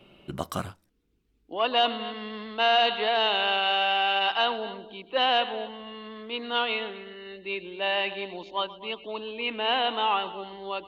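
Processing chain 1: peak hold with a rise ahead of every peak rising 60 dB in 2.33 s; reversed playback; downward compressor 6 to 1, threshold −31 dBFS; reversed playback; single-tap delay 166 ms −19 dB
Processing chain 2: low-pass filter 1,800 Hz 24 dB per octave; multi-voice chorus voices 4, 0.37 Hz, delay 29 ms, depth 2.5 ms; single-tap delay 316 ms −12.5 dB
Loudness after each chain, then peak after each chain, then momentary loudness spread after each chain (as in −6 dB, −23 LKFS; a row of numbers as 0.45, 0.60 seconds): −33.0, −32.0 LKFS; −19.0, −15.0 dBFS; 3, 15 LU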